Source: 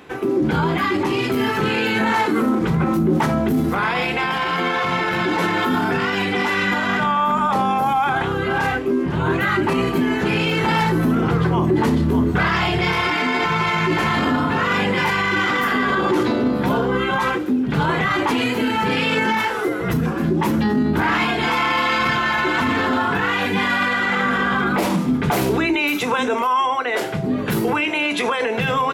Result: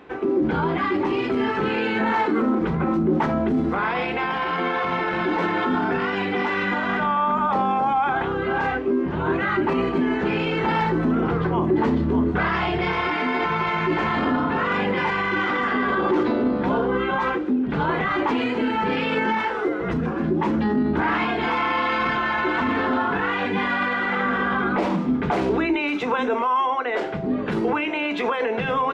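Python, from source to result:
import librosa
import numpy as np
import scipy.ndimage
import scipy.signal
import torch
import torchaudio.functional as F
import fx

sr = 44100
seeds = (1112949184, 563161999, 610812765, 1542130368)

y = fx.peak_eq(x, sr, hz=120.0, db=-10.0, octaves=1.0)
y = np.repeat(scipy.signal.resample_poly(y, 1, 2), 2)[:len(y)]
y = fx.spacing_loss(y, sr, db_at_10k=24)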